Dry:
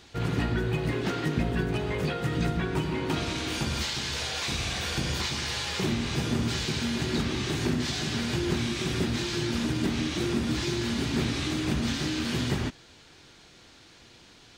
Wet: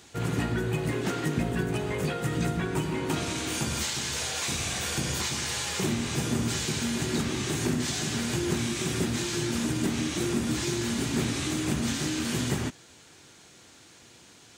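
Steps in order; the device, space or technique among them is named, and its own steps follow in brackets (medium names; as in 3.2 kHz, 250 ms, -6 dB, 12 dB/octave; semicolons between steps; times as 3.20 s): budget condenser microphone (high-pass 81 Hz; resonant high shelf 5.9 kHz +7 dB, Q 1.5)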